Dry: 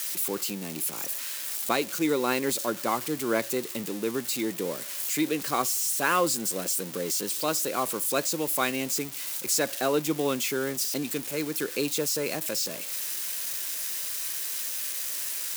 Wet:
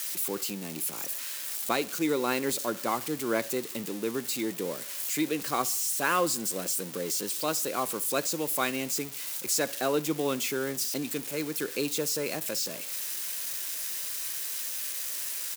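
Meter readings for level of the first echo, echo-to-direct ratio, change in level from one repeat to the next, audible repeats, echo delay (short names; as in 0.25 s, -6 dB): -22.0 dB, -21.0 dB, -7.0 dB, 2, 66 ms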